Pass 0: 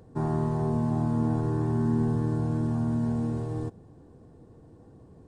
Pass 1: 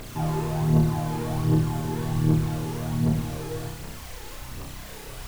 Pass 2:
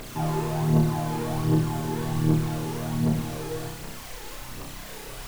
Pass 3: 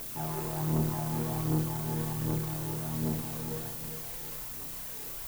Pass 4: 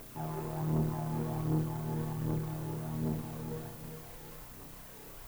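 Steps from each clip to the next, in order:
added noise pink -44 dBFS; phaser 1.3 Hz, delay 2.5 ms, feedback 64%; flutter echo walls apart 5.4 m, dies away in 0.61 s; trim -1.5 dB
peaking EQ 68 Hz -10 dB 1.4 oct; trim +1.5 dB
valve stage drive 19 dB, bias 0.8; added noise violet -37 dBFS; on a send: filtered feedback delay 405 ms, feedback 38%, level -8.5 dB; on the sum: trim -4 dB
treble shelf 2.5 kHz -10.5 dB; trim -2 dB

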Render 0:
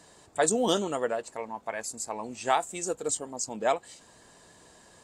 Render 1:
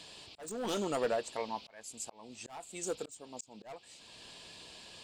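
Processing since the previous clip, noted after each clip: hard clipper -24.5 dBFS, distortion -9 dB; band noise 2.4–5 kHz -53 dBFS; slow attack 634 ms; trim -1 dB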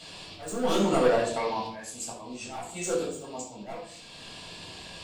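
simulated room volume 800 m³, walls furnished, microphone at 7 m

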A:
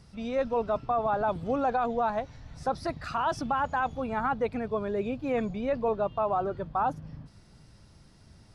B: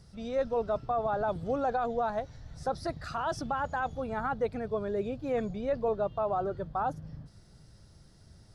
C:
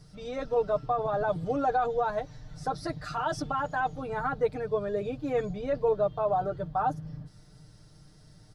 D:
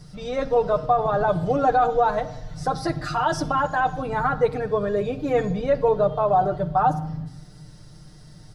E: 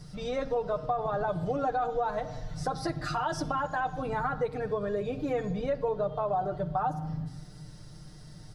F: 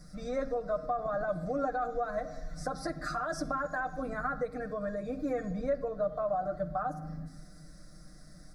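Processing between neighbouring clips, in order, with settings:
fifteen-band graphic EQ 250 Hz -5 dB, 1 kHz -6 dB, 2.5 kHz -8 dB
comb 6.6 ms, depth 85%
simulated room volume 2900 m³, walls furnished, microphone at 0.93 m; trim +7.5 dB
compression 2.5:1, threshold -28 dBFS, peak gain reduction 9.5 dB; trim -2 dB
static phaser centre 600 Hz, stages 8

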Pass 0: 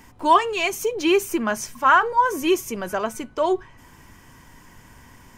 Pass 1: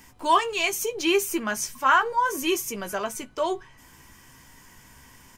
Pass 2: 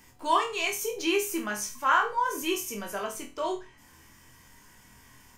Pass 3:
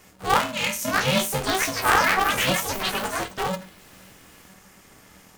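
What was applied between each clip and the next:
treble shelf 2.3 kHz +8.5 dB; doubling 15 ms -8 dB; trim -6 dB
flutter echo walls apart 4.2 m, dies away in 0.3 s; trim -5.5 dB
ever faster or slower copies 727 ms, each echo +6 st, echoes 3; polarity switched at an audio rate 190 Hz; trim +3.5 dB

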